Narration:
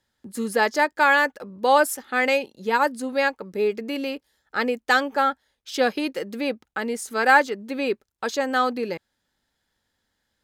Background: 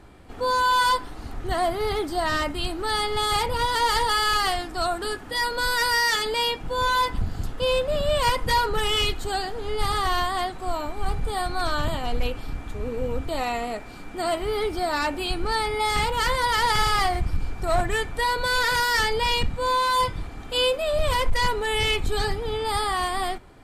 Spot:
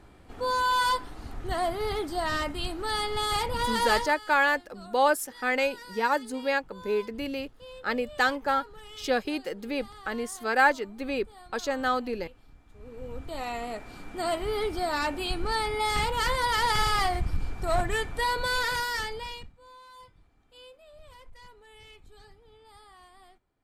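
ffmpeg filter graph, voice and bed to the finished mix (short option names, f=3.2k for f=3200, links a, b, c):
-filter_complex "[0:a]adelay=3300,volume=-5dB[a];[1:a]volume=15dB,afade=t=out:st=3.92:d=0.21:silence=0.11885,afade=t=in:st=12.68:d=1.29:silence=0.105925,afade=t=out:st=18.39:d=1.14:silence=0.0562341[b];[a][b]amix=inputs=2:normalize=0"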